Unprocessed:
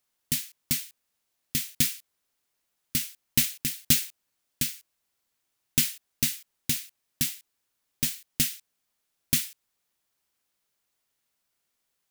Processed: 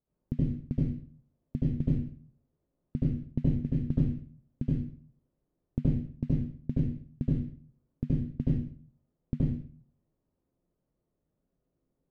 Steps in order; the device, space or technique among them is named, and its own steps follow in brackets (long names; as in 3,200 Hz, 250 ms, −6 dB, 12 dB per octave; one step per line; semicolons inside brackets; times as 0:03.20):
television next door (downward compressor 4 to 1, threshold −28 dBFS, peak gain reduction 11 dB; low-pass filter 340 Hz 12 dB per octave; convolution reverb RT60 0.50 s, pre-delay 69 ms, DRR −7.5 dB)
level +6 dB